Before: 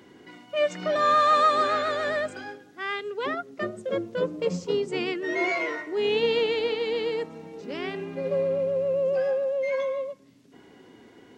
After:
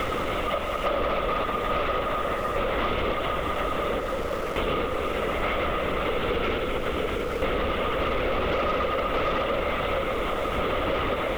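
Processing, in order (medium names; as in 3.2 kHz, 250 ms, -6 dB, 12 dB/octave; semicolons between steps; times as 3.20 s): spectral levelling over time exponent 0.2; bass shelf 370 Hz +3 dB; level rider; random-step tremolo, depth 95%; on a send at -2 dB: reverberation RT60 4.2 s, pre-delay 5 ms; on the sum: LPC vocoder at 8 kHz whisper; peaking EQ 120 Hz -8.5 dB 1.1 oct; in parallel at -11 dB: bit crusher 5-bit; on the sum: saturation -5 dBFS, distortion -19 dB; compression 6:1, threshold -24 dBFS, peak gain reduction 13.5 dB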